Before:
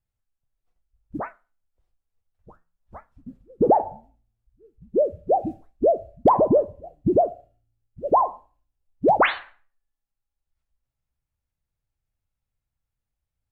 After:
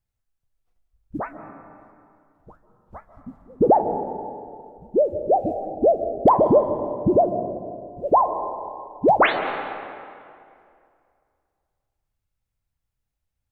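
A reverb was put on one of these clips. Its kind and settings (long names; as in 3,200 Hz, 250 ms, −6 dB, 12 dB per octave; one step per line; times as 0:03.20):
comb and all-pass reverb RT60 2.4 s, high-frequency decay 0.65×, pre-delay 105 ms, DRR 8.5 dB
level +1.5 dB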